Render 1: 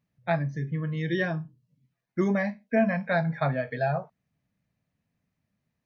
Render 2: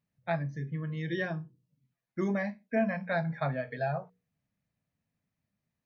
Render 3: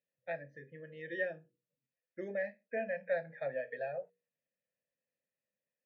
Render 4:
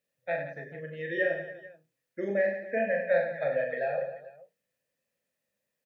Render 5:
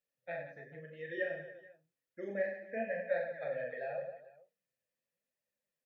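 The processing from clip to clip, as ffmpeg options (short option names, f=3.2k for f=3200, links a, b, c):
-af "bandreject=f=60:t=h:w=6,bandreject=f=120:t=h:w=6,bandreject=f=180:t=h:w=6,bandreject=f=240:t=h:w=6,bandreject=f=300:t=h:w=6,bandreject=f=360:t=h:w=6,bandreject=f=420:t=h:w=6,bandreject=f=480:t=h:w=6,volume=-5dB"
-filter_complex "[0:a]asplit=3[a][b][c];[a]bandpass=f=530:t=q:w=8,volume=0dB[d];[b]bandpass=f=1.84k:t=q:w=8,volume=-6dB[e];[c]bandpass=f=2.48k:t=q:w=8,volume=-9dB[f];[d][e][f]amix=inputs=3:normalize=0,volume=5dB"
-af "aecho=1:1:40|96|174.4|284.2|437.8:0.631|0.398|0.251|0.158|0.1,volume=7dB"
-af "flanger=delay=1.1:depth=9.3:regen=43:speed=0.92:shape=triangular,volume=-5dB"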